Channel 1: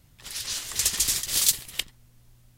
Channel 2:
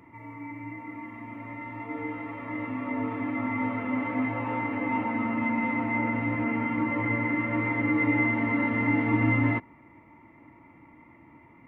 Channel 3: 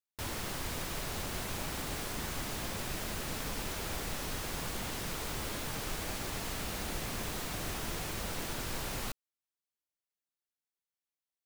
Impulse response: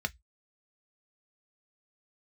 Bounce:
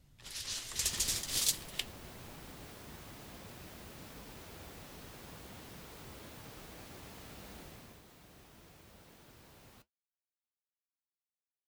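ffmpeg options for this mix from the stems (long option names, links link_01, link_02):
-filter_complex "[0:a]highshelf=frequency=7800:gain=-8.5,volume=-1dB[link_01];[2:a]highpass=50,equalizer=frequency=8300:width=0.54:gain=-5,adelay=700,volume=-6dB,afade=type=out:start_time=7.58:duration=0.44:silence=0.398107[link_02];[link_01][link_02]amix=inputs=2:normalize=0,equalizer=frequency=1500:width=0.65:gain=-3,flanger=delay=3.8:depth=9.3:regen=-66:speed=1.2:shape=triangular"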